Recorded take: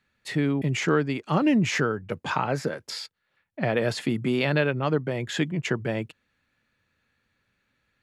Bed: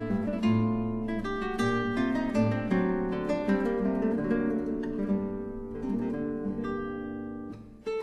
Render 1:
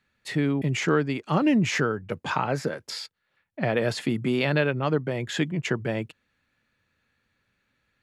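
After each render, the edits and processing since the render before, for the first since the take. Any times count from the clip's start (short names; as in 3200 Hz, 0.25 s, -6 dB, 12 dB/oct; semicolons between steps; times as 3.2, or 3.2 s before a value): nothing audible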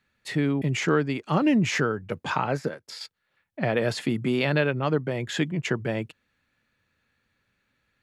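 2.57–3.01 upward expander, over -48 dBFS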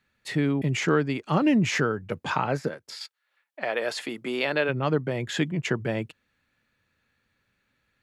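2.95–4.68 HPF 860 Hz -> 310 Hz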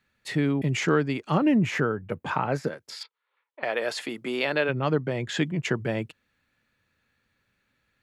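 1.37–2.52 bell 5400 Hz -10 dB 1.6 oct; 3.03–3.63 speaker cabinet 360–3400 Hz, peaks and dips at 440 Hz +10 dB, 670 Hz -9 dB, 1000 Hz +7 dB, 1700 Hz -9 dB, 2700 Hz -5 dB; 4.65–5.44 LPF 9100 Hz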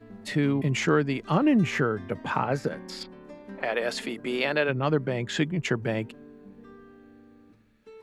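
add bed -16 dB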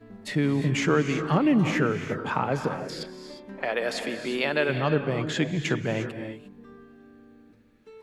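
non-linear reverb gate 0.38 s rising, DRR 7.5 dB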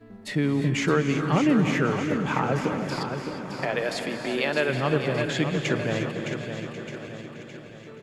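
regenerating reverse delay 0.545 s, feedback 57%, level -12.5 dB; feedback echo 0.614 s, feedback 50%, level -8 dB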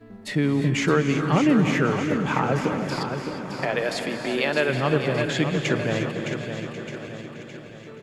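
gain +2 dB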